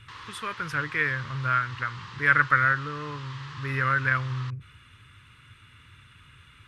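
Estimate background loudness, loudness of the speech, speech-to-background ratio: -42.5 LUFS, -26.0 LUFS, 16.5 dB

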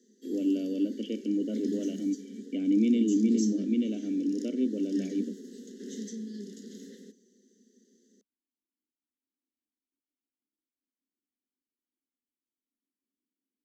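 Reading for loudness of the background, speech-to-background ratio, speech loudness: -41.0 LUFS, 11.5 dB, -29.5 LUFS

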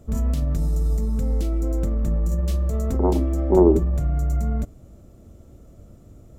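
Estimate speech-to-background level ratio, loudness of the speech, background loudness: 3.5 dB, -21.0 LUFS, -24.5 LUFS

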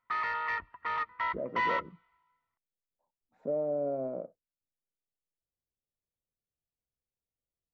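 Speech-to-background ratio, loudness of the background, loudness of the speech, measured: -3.0 dB, -33.0 LUFS, -36.0 LUFS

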